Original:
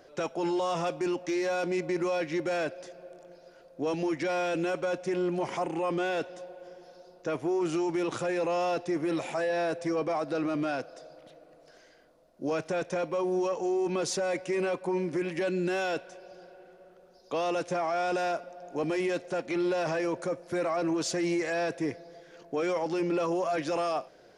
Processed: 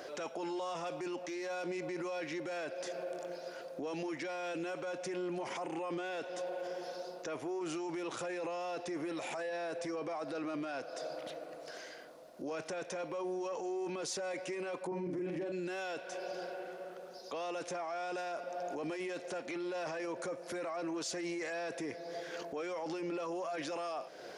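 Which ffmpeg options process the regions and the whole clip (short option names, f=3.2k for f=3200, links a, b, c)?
-filter_complex "[0:a]asettb=1/sr,asplit=3[a][b][c];[a]atrim=end=14.874[d];[b]atrim=start=14.87:end=15.52,asetpts=PTS-STARTPTS,afade=t=in:d=0.004:c=qsin,afade=t=out:st=0.646:d=0.004:c=qsin,tiltshelf=f=900:g=8.5,asplit=2[e][f];[f]adelay=45,volume=-3dB[g];[e][g]amix=inputs=2:normalize=0,atrim=end_sample=28665[h];[c]atrim=start=15.516[i];[d][h]acrossfade=d=0.004:c1=hsin:c2=qsin[j];[j][i]acrossfade=d=0.004:c1=qsin:c2=hsin,acompressor=threshold=-43dB:ratio=2.5,highpass=f=380:p=1,alimiter=level_in=18.5dB:limit=-24dB:level=0:latency=1:release=24,volume=-18.5dB,volume=10.5dB"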